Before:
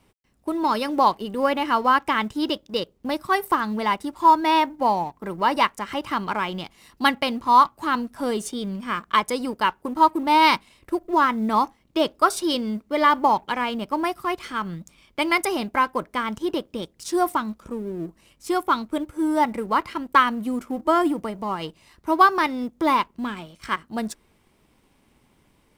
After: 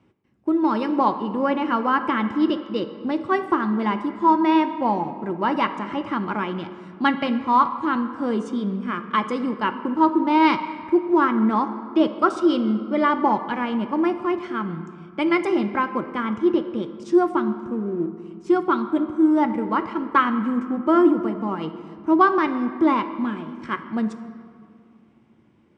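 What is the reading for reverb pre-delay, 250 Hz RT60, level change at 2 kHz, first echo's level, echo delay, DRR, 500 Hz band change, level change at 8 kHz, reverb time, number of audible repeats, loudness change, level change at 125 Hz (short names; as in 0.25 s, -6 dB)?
4 ms, 2.7 s, -2.5 dB, none, none, 8.0 dB, +2.5 dB, under -15 dB, 2.3 s, none, +0.5 dB, +4.0 dB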